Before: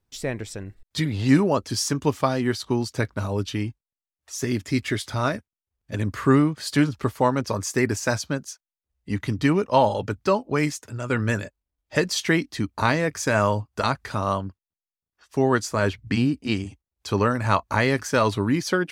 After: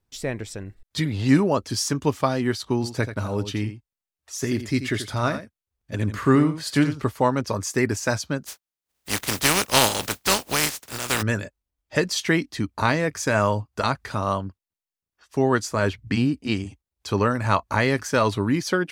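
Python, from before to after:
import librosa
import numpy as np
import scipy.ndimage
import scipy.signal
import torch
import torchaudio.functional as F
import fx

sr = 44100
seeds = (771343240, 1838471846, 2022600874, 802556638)

y = fx.echo_single(x, sr, ms=85, db=-11.0, at=(2.82, 7.0), fade=0.02)
y = fx.spec_flatten(y, sr, power=0.28, at=(8.45, 11.21), fade=0.02)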